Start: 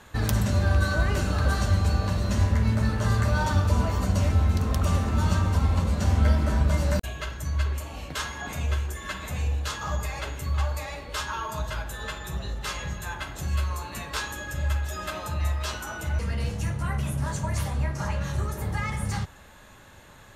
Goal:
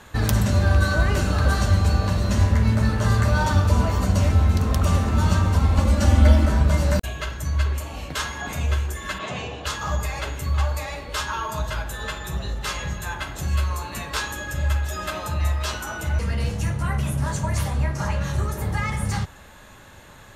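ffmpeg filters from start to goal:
ffmpeg -i in.wav -filter_complex "[0:a]asettb=1/sr,asplit=3[link_01][link_02][link_03];[link_01]atrim=end=5.784[link_04];[link_02]atrim=start=5.78:end=6.46,asetpts=PTS-STARTPTS,afade=type=in:duration=0.004:curve=qsin,afade=type=out:start_time=0.676:duration=0.004:curve=qsin,aecho=1:1:3.5:0.95,atrim=end_sample=29988[link_05];[link_03]atrim=start=6.456[link_06];[link_04][link_05]acrossfade=duration=0.004:curve1=hsin:curve2=qsin[link_07];[link_07][link_06]acrossfade=duration=0.004:curve1=qsin:curve2=hsin,asplit=3[link_08][link_09][link_10];[link_08]afade=type=out:start_time=9.18:duration=0.02[link_11];[link_09]highpass=frequency=120:width=0.5412,highpass=frequency=120:width=1.3066,equalizer=frequency=390:width_type=q:width=4:gain=7,equalizer=frequency=670:width_type=q:width=4:gain=8,equalizer=frequency=1100:width_type=q:width=4:gain=5,equalizer=frequency=3000:width_type=q:width=4:gain=8,lowpass=frequency=6400:width=0.5412,lowpass=frequency=6400:width=1.3066,afade=type=in:start_time=9.18:duration=0.02,afade=type=out:start_time=9.65:duration=0.02[link_12];[link_10]afade=type=in:start_time=9.65:duration=0.02[link_13];[link_11][link_12][link_13]amix=inputs=3:normalize=0,volume=4dB" out.wav

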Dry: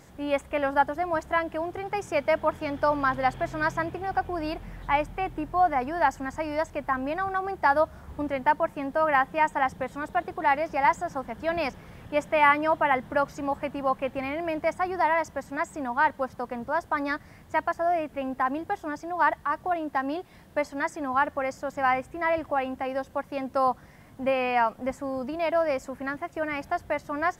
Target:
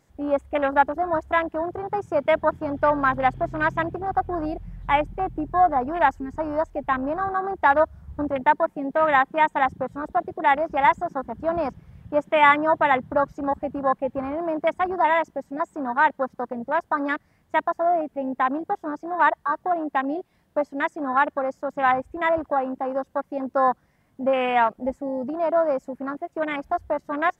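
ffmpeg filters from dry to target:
ffmpeg -i in.wav -af "afwtdn=0.0316,volume=4dB" out.wav

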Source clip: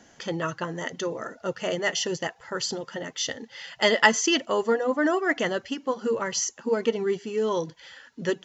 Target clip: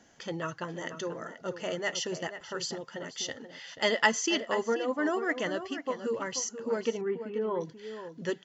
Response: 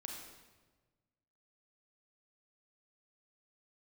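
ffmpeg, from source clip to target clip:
-filter_complex "[0:a]asettb=1/sr,asplit=3[link_01][link_02][link_03];[link_01]atrim=end=7.014[link_04];[link_02]atrim=start=7.01:end=7.61,asetpts=PTS-STARTPTS,afade=type=in:duration=0.004:curve=qsin,afade=type=out:start_time=0.596:duration=0.004:curve=qsin,lowpass=frequency=2200:width=0.5412,lowpass=frequency=2200:width=1.3066[link_05];[link_03]atrim=start=7.606[link_06];[link_04][link_05]acrossfade=duration=0.004:curve1=hsin:curve2=qsin[link_07];[link_07][link_06]acrossfade=duration=0.004:curve1=qsin:curve2=hsin,asplit=2[link_08][link_09];[link_09]adelay=484,volume=-10dB,highshelf=frequency=4000:gain=-10.9[link_10];[link_08][link_10]amix=inputs=2:normalize=0,volume=-6dB"

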